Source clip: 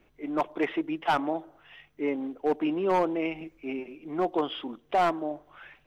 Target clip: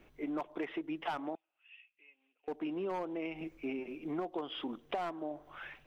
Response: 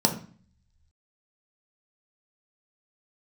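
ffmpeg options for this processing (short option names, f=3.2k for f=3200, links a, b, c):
-filter_complex "[0:a]acompressor=threshold=-36dB:ratio=10,asettb=1/sr,asplit=3[a][b][c];[a]atrim=end=1.354[d];[b]atrim=start=1.35:end=2.48,asetpts=PTS-STARTPTS,afade=t=in:d=0.004:c=qsin,afade=t=out:st=1.126:d=0.004:c=qsin,bandpass=f=2.6k:t=q:w=13:csg=0[e];[c]atrim=start=2.476[f];[d][e]acrossfade=d=0.004:c1=hsin:c2=qsin[g];[g][f]acrossfade=d=0.004:c1=qsin:c2=hsin,volume=1.5dB"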